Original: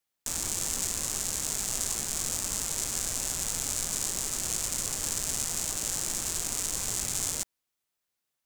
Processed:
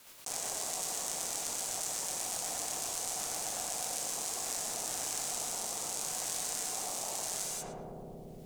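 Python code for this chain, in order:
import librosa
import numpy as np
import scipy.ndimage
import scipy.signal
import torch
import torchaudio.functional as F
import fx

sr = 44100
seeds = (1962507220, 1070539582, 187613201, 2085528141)

p1 = fx.rotary_switch(x, sr, hz=8.0, then_hz=0.8, switch_at_s=3.9)
p2 = p1 * np.sin(2.0 * np.pi * 740.0 * np.arange(len(p1)) / sr)
p3 = fx.peak_eq(p2, sr, hz=68.0, db=-4.5, octaves=1.0)
p4 = p3 + fx.echo_filtered(p3, sr, ms=114, feedback_pct=79, hz=860.0, wet_db=-6.5, dry=0)
p5 = fx.rev_gated(p4, sr, seeds[0], gate_ms=210, shape='flat', drr_db=1.5)
p6 = fx.env_flatten(p5, sr, amount_pct=70)
y = F.gain(torch.from_numpy(p6), -5.0).numpy()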